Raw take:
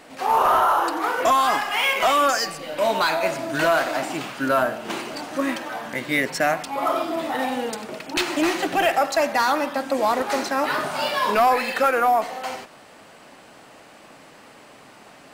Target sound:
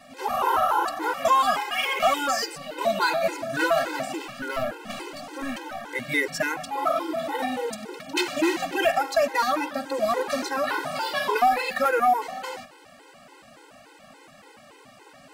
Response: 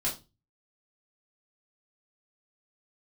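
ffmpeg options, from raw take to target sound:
-filter_complex "[0:a]asettb=1/sr,asplit=3[link_01][link_02][link_03];[link_01]atrim=end=4.154[link_04];[link_02]atrim=start=4.15:end=5.89,asetpts=PTS-STARTPTS,afade=type=in:duration=0.004:curve=qsin,afade=type=out:start_time=1.736:duration=0.004:curve=qsin,aeval=exprs='(tanh(11.2*val(0)+0.4)-tanh(0.4))/11.2':channel_layout=same[link_05];[link_03]atrim=start=5.886[link_06];[link_04][link_05]acrossfade=duration=0.004:curve1=hsin:curve2=qsin[link_07];[link_07][link_06]acrossfade=duration=0.004:curve1=qsin:curve2=hsin,afftfilt=real='re*gt(sin(2*PI*3.5*pts/sr)*(1-2*mod(floor(b*sr/1024/270),2)),0)':imag='im*gt(sin(2*PI*3.5*pts/sr)*(1-2*mod(floor(b*sr/1024/270),2)),0)':win_size=1024:overlap=0.75"

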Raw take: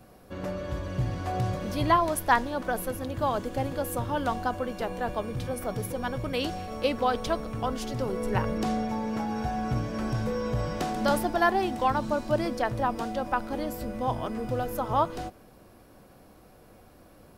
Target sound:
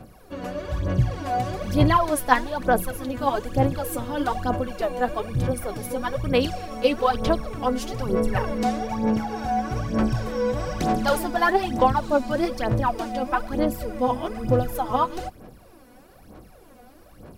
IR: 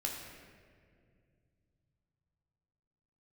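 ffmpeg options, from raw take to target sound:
-af "aphaser=in_gain=1:out_gain=1:delay=4.1:decay=0.68:speed=1.1:type=sinusoidal,volume=1dB"

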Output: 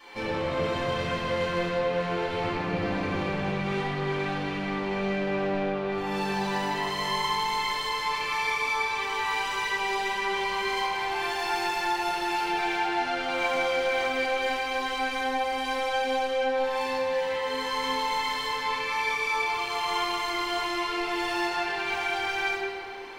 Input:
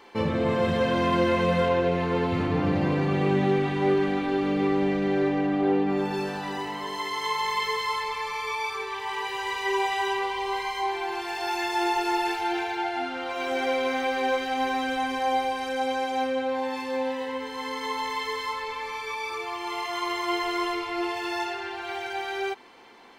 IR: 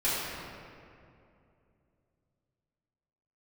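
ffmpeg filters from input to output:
-filter_complex "[0:a]tiltshelf=frequency=1100:gain=-4,acompressor=threshold=-28dB:ratio=6,asoftclip=type=tanh:threshold=-30.5dB[link_01];[1:a]atrim=start_sample=2205[link_02];[link_01][link_02]afir=irnorm=-1:irlink=0,volume=-4.5dB"

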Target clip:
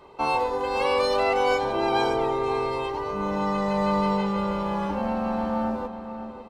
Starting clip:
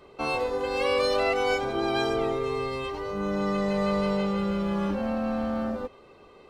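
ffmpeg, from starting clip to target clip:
ffmpeg -i in.wav -filter_complex "[0:a]equalizer=frequency=910:width=4.4:gain=13.5,asplit=2[link_01][link_02];[link_02]adelay=553,lowpass=frequency=2000:poles=1,volume=-9.5dB,asplit=2[link_03][link_04];[link_04]adelay=553,lowpass=frequency=2000:poles=1,volume=0.35,asplit=2[link_05][link_06];[link_06]adelay=553,lowpass=frequency=2000:poles=1,volume=0.35,asplit=2[link_07][link_08];[link_08]adelay=553,lowpass=frequency=2000:poles=1,volume=0.35[link_09];[link_03][link_05][link_07][link_09]amix=inputs=4:normalize=0[link_10];[link_01][link_10]amix=inputs=2:normalize=0" out.wav

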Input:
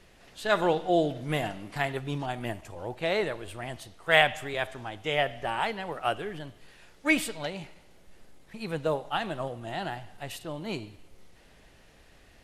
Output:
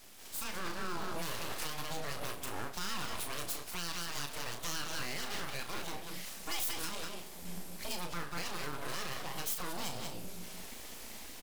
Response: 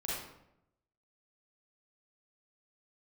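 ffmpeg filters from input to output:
-filter_complex "[0:a]asplit=2[link_01][link_02];[link_02]adelay=204.1,volume=-10dB,highshelf=frequency=4000:gain=-4.59[link_03];[link_01][link_03]amix=inputs=2:normalize=0,afreqshift=80,asetrate=48000,aresample=44100,aeval=exprs='abs(val(0))':channel_layout=same,highshelf=frequency=11000:gain=9.5,alimiter=level_in=12dB:limit=-24dB:level=0:latency=1:release=415,volume=-12dB,bass=frequency=250:gain=-2,treble=frequency=4000:gain=7,asplit=2[link_04][link_05];[link_05]adelay=35,volume=-7.5dB[link_06];[link_04][link_06]amix=inputs=2:normalize=0,dynaudnorm=framelen=120:gausssize=7:maxgain=8dB"

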